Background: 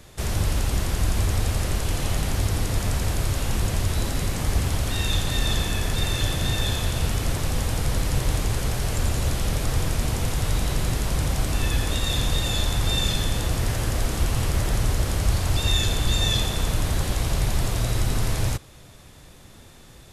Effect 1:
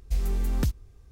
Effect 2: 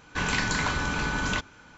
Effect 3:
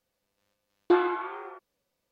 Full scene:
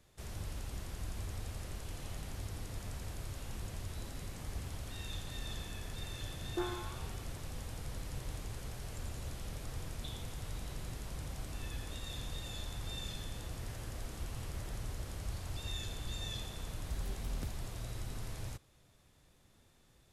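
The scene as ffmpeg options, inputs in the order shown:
-filter_complex "[3:a]asplit=2[s0][s1];[0:a]volume=0.112[s2];[s1]asuperpass=centerf=3600:order=4:qfactor=5.6[s3];[1:a]acompressor=threshold=0.02:ratio=6:attack=3.2:release=140:knee=1:detection=peak[s4];[s0]atrim=end=2.11,asetpts=PTS-STARTPTS,volume=0.168,afade=t=in:d=0.004:c=hsin,afade=t=out:st=2.106:d=0.004:c=hsin,adelay=5670[s5];[s3]atrim=end=2.11,asetpts=PTS-STARTPTS,volume=0.944,afade=t=in:d=0.004:c=hsin,afade=t=out:st=2.106:d=0.004:c=hsin,adelay=403074S[s6];[s4]atrim=end=1.11,asetpts=PTS-STARTPTS,volume=0.562,afade=t=in:d=0.004:c=hsin,afade=t=out:st=1.106:d=0.004:c=hsin,adelay=16800[s7];[s2][s5][s6][s7]amix=inputs=4:normalize=0"

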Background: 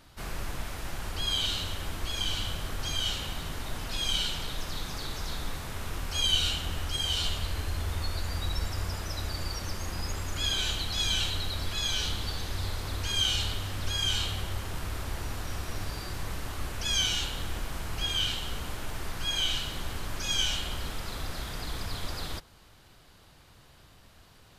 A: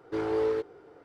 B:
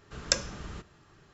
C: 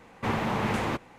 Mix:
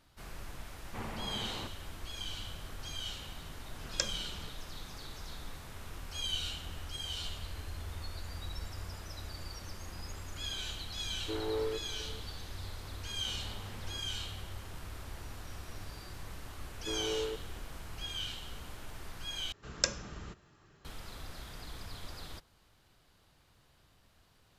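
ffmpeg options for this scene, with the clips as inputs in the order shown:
-filter_complex "[3:a]asplit=2[s0][s1];[2:a]asplit=2[s2][s3];[1:a]asplit=2[s4][s5];[0:a]volume=0.316[s6];[s4]aecho=1:1:506:0.133[s7];[s1]acompressor=threshold=0.01:ratio=6:attack=3.2:release=140:knee=1:detection=peak[s8];[s6]asplit=2[s9][s10];[s9]atrim=end=19.524[s11];[s3]atrim=end=1.33,asetpts=PTS-STARTPTS,volume=0.631[s12];[s10]atrim=start=20.846[s13];[s0]atrim=end=1.18,asetpts=PTS-STARTPTS,volume=0.188,afade=t=in:d=0.004:c=hsin,afade=t=out:st=1.176:d=0.004:c=hsin,adelay=710[s14];[s2]atrim=end=1.33,asetpts=PTS-STARTPTS,volume=0.422,afade=t=in:d=0.004:c=hsin,afade=t=out:st=1.326:d=0.004:c=hsin,adelay=3680[s15];[s7]atrim=end=1.04,asetpts=PTS-STARTPTS,volume=0.422,afade=t=in:d=0.004:c=hsin,afade=t=out:st=1.036:d=0.004:c=hsin,adelay=11160[s16];[s8]atrim=end=1.18,asetpts=PTS-STARTPTS,volume=0.335,afade=t=in:d=0.004:c=hsin,afade=t=out:st=1.176:d=0.004:c=hsin,adelay=13040[s17];[s5]atrim=end=1.04,asetpts=PTS-STARTPTS,volume=0.355,afade=t=in:d=0.004:c=hsin,afade=t=out:st=1.036:d=0.004:c=hsin,adelay=16740[s18];[s11][s12]acrossfade=d=0.004:c1=hsin:c2=hsin[s19];[s19][s13]acrossfade=d=0.004:c1=hsin:c2=hsin[s20];[s20][s14][s15][s16][s17][s18]amix=inputs=6:normalize=0"

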